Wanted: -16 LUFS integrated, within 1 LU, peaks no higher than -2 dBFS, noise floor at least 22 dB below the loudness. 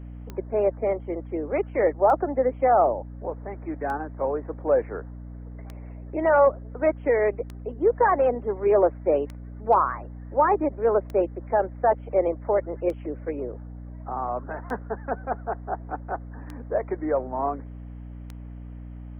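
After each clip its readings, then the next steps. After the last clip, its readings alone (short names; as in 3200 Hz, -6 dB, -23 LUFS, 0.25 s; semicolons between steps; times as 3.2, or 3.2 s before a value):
clicks 11; hum 60 Hz; harmonics up to 300 Hz; hum level -36 dBFS; loudness -25.0 LUFS; peak -8.5 dBFS; loudness target -16.0 LUFS
-> de-click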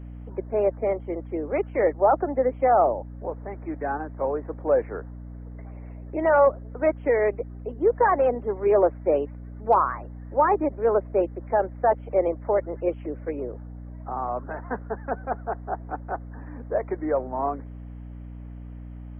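clicks 0; hum 60 Hz; harmonics up to 300 Hz; hum level -36 dBFS
-> de-hum 60 Hz, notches 5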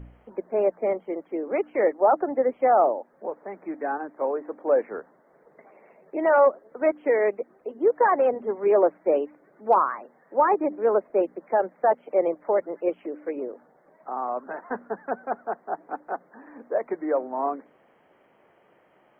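hum none; loudness -25.0 LUFS; peak -8.5 dBFS; loudness target -16.0 LUFS
-> gain +9 dB; limiter -2 dBFS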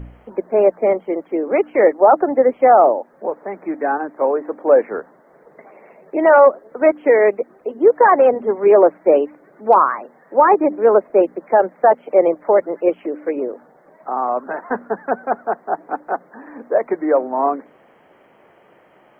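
loudness -16.5 LUFS; peak -2.0 dBFS; noise floor -52 dBFS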